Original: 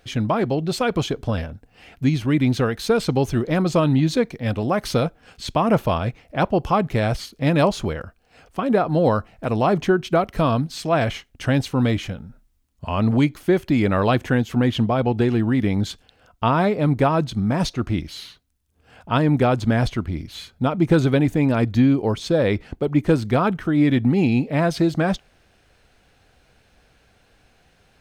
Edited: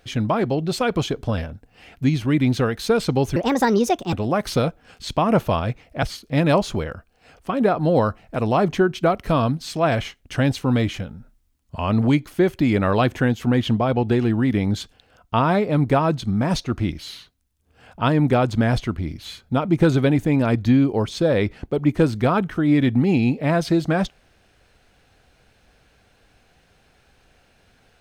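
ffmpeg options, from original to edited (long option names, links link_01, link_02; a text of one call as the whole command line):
ffmpeg -i in.wav -filter_complex "[0:a]asplit=4[link_01][link_02][link_03][link_04];[link_01]atrim=end=3.364[link_05];[link_02]atrim=start=3.36:end=4.51,asetpts=PTS-STARTPTS,asetrate=66150,aresample=44100[link_06];[link_03]atrim=start=4.506:end=6.412[link_07];[link_04]atrim=start=7.118[link_08];[link_05][link_06]acrossfade=duration=0.004:curve1=hsin:curve2=hsin[link_09];[link_09][link_07]acrossfade=duration=0.004:curve1=hsin:curve2=hsin[link_10];[link_10][link_08]acrossfade=duration=0.004:curve1=hsin:curve2=hsin" out.wav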